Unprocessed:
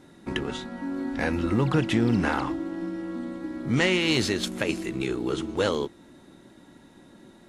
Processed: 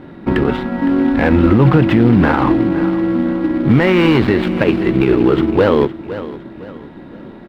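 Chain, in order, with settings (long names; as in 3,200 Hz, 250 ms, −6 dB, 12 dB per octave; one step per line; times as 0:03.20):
gap after every zero crossing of 0.12 ms
floating-point word with a short mantissa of 2 bits
high-frequency loss of the air 440 metres
repeating echo 510 ms, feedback 36%, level −16.5 dB
boost into a limiter +18.5 dB
level −1 dB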